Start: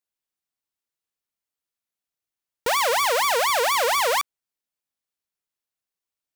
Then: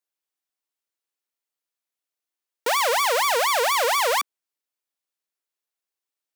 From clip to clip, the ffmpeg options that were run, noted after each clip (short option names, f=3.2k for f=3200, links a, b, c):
-af "highpass=f=270:w=0.5412,highpass=f=270:w=1.3066"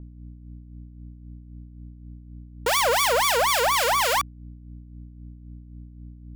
-filter_complex "[0:a]acrusher=bits=4:mix=0:aa=0.000001,aeval=exprs='val(0)+0.01*(sin(2*PI*60*n/s)+sin(2*PI*2*60*n/s)/2+sin(2*PI*3*60*n/s)/3+sin(2*PI*4*60*n/s)/4+sin(2*PI*5*60*n/s)/5)':c=same,acrossover=split=1500[a][b];[a]aeval=exprs='val(0)*(1-0.5/2+0.5/2*cos(2*PI*3.8*n/s))':c=same[c];[b]aeval=exprs='val(0)*(1-0.5/2-0.5/2*cos(2*PI*3.8*n/s))':c=same[d];[c][d]amix=inputs=2:normalize=0,volume=2dB"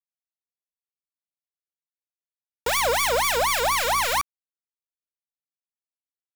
-af "acrusher=bits=3:mix=0:aa=0.5,volume=-1.5dB"